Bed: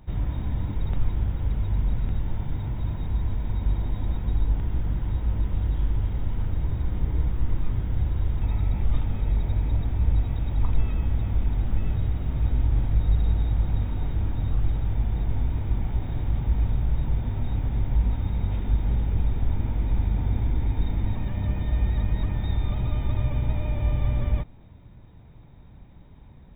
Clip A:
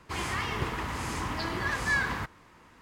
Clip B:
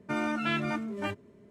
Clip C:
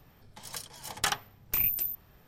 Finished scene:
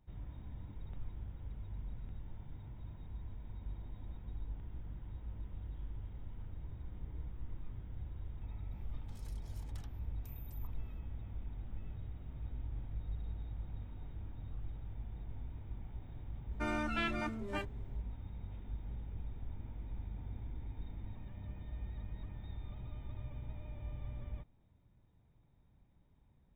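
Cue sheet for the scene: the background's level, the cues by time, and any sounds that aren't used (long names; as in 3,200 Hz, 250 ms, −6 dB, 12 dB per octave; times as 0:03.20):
bed −20 dB
0:08.72: mix in C −16 dB + downward compressor 4 to 1, threshold −44 dBFS
0:16.51: mix in B −5.5 dB + high-pass filter 200 Hz
not used: A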